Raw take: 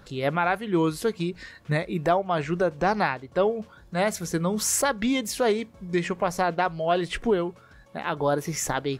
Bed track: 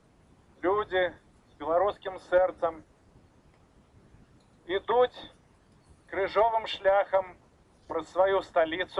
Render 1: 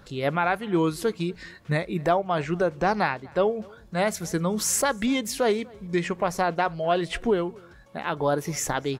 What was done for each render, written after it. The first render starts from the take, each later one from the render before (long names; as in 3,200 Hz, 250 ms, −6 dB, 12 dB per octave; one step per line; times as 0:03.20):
slap from a distant wall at 42 metres, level −25 dB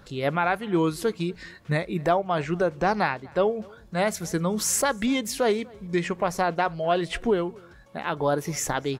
no processing that can be heard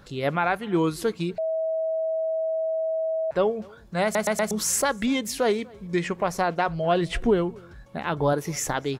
0:01.38–0:03.31: beep over 644 Hz −23 dBFS
0:04.03: stutter in place 0.12 s, 4 plays
0:06.68–0:08.33: low-shelf EQ 190 Hz +9 dB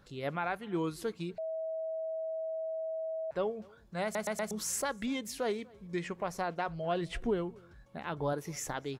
level −10.5 dB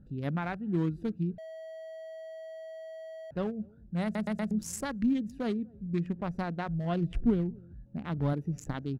adaptive Wiener filter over 41 samples
low shelf with overshoot 320 Hz +8.5 dB, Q 1.5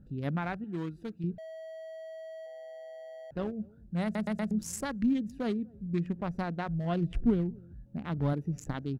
0:00.64–0:01.24: low-shelf EQ 480 Hz −9 dB
0:02.46–0:03.53: amplitude modulation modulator 140 Hz, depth 25%